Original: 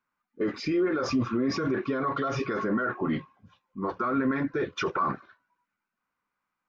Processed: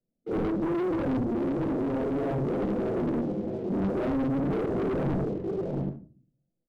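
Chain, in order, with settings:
random phases in long frames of 200 ms
elliptic low-pass filter 650 Hz, stop band 40 dB
downward compressor 6 to 1, threshold −41 dBFS, peak gain reduction 20.5 dB
mains-hum notches 50/100/150/200/250/300/350/400 Hz
single-tap delay 678 ms −10 dB
leveller curve on the samples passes 3
0:01.21–0:03.95: low-shelf EQ 140 Hz −11.5 dB
convolution reverb RT60 0.40 s, pre-delay 6 ms, DRR 7.5 dB
sine wavefolder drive 8 dB, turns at −26 dBFS
low-shelf EQ 480 Hz +10.5 dB
highs frequency-modulated by the lows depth 0.63 ms
level −5.5 dB

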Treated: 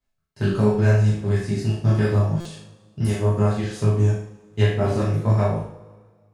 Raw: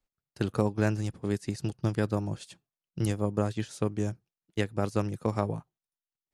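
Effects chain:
multi-voice chorus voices 4, 0.79 Hz, delay 23 ms, depth 3.6 ms
in parallel at −4 dB: soft clipping −24 dBFS, distortion −15 dB
on the sum: high-shelf EQ 4,600 Hz −5.5 dB
on a send: flutter between parallel walls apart 6.5 metres, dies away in 0.38 s
on the sum: coupled-rooms reverb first 0.38 s, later 1.7 s, from −20 dB, DRR −6.5 dB
buffer that repeats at 0:02.40, samples 256, times 8
level −1.5 dB

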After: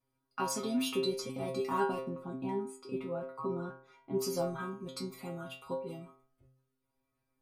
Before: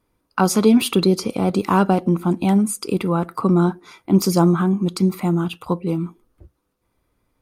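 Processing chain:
0:02.08–0:04.19: low-pass filter 1,400 Hz 6 dB per octave
stiff-string resonator 130 Hz, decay 0.52 s, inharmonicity 0.002

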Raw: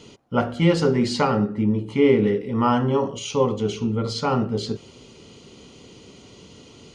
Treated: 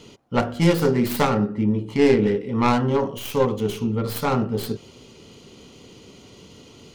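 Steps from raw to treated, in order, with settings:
stylus tracing distortion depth 0.24 ms

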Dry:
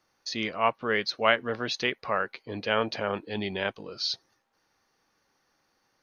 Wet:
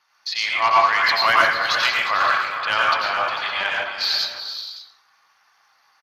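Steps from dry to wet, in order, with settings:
inverse Chebyshev high-pass filter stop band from 240 Hz, stop band 60 dB
soft clipping −19.5 dBFS, distortion −12 dB
on a send: multi-tap delay 358/446/567 ms −11/−13/−16 dB
on the sum: dense smooth reverb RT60 0.9 s, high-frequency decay 0.5×, pre-delay 80 ms, DRR −3.5 dB
level +9 dB
Speex 24 kbit/s 32,000 Hz

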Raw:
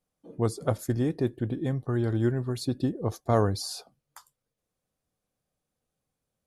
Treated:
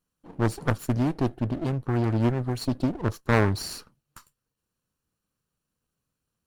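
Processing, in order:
lower of the sound and its delayed copy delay 0.7 ms
highs frequency-modulated by the lows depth 0.55 ms
level +2.5 dB

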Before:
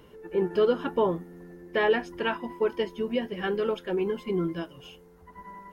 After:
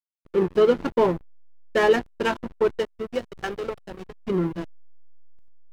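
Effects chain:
0:02.72–0:04.23: parametric band 84 Hz → 300 Hz −14 dB 2.1 octaves
slack as between gear wheels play −27 dBFS
level +5.5 dB

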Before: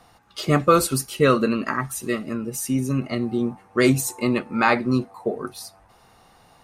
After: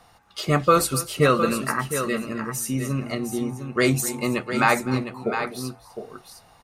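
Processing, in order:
parametric band 280 Hz −4.5 dB 1.2 octaves
hum removal 59.63 Hz, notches 2
on a send: multi-tap delay 254/708 ms −17/−8.5 dB

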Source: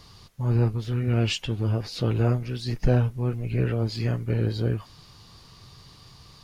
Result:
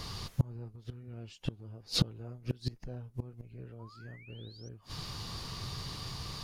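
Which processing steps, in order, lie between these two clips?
dynamic equaliser 2,200 Hz, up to −6 dB, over −48 dBFS, Q 1
sound drawn into the spectrogram rise, 0:03.79–0:04.69, 910–6,000 Hz −34 dBFS
gate with flip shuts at −23 dBFS, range −31 dB
level +8.5 dB

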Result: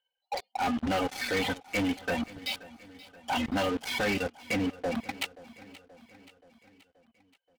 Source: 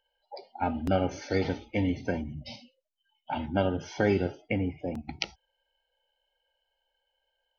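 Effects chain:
high-pass filter 140 Hz 12 dB per octave
reverb reduction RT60 1.4 s
low-pass filter 3,800 Hz 24 dB per octave
parametric band 290 Hz −13 dB 2.9 octaves
comb filter 4 ms, depth 63%
leveller curve on the samples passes 5
downward compressor, threshold −26 dBFS, peak gain reduction 8 dB
brickwall limiter −26 dBFS, peak gain reduction 8.5 dB
soft clipping −29.5 dBFS, distortion −18 dB
repeating echo 528 ms, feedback 57%, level −19 dB
level +5.5 dB

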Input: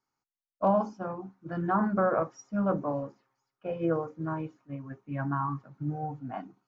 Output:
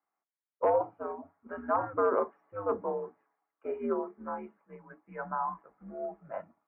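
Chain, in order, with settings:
gain into a clipping stage and back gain 17.5 dB
single-sideband voice off tune −100 Hz 400–2,300 Hz

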